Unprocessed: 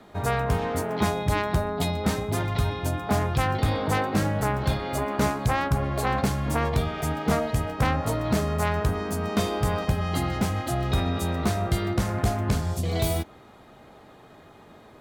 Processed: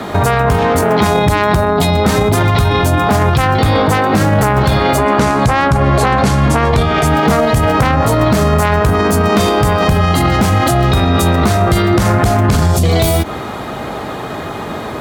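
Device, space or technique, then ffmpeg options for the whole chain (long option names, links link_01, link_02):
mastering chain: -filter_complex "[0:a]asettb=1/sr,asplit=3[link_01][link_02][link_03];[link_01]atrim=end=4.994[link_04];[link_02]atrim=start=4.99:end=7.06,asetpts=PTS-STARTPTS,afade=type=in:duration=0.004:curve=qsin,afade=type=out:start_time=2.066:duration=0.004:curve=qsin,lowpass=10000[link_05];[link_03]atrim=start=7.056[link_06];[link_04][link_05]acrossfade=duration=0.004:curve1=hsin:curve2=qsin[link_07];[link_07][link_06]acrossfade=duration=0.004:curve1=qsin:curve2=hsin,highpass=45,equalizer=frequency=1200:width_type=o:width=0.77:gain=2,acompressor=threshold=-26dB:ratio=3,asoftclip=type=hard:threshold=-19.5dB,alimiter=level_in=29.5dB:limit=-1dB:release=50:level=0:latency=1,volume=-3dB"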